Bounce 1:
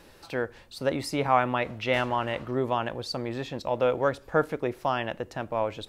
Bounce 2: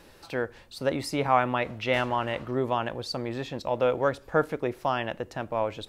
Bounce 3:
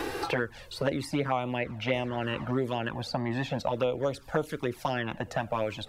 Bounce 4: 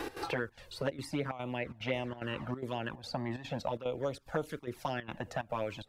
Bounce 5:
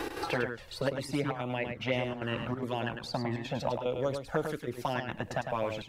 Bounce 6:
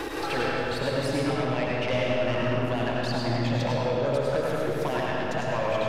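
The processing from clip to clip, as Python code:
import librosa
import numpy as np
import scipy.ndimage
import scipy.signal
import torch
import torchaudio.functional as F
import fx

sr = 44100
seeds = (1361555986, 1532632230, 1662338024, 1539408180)

y1 = x
y2 = fx.env_flanger(y1, sr, rest_ms=2.7, full_db=-20.0)
y2 = fx.band_squash(y2, sr, depth_pct=100)
y3 = fx.step_gate(y2, sr, bpm=183, pattern='x.xxxx.xxx', floor_db=-12.0, edge_ms=4.5)
y3 = F.gain(torch.from_numpy(y3), -5.5).numpy()
y4 = y3 + 10.0 ** (-6.5 / 20.0) * np.pad(y3, (int(103 * sr / 1000.0), 0))[:len(y3)]
y4 = F.gain(torch.from_numpy(y4), 3.0).numpy()
y5 = 10.0 ** (-28.5 / 20.0) * np.tanh(y4 / 10.0 ** (-28.5 / 20.0))
y5 = fx.rev_freeverb(y5, sr, rt60_s=2.8, hf_ratio=0.7, predelay_ms=50, drr_db=-3.5)
y5 = fx.doppler_dist(y5, sr, depth_ms=0.1)
y5 = F.gain(torch.from_numpy(y5), 4.5).numpy()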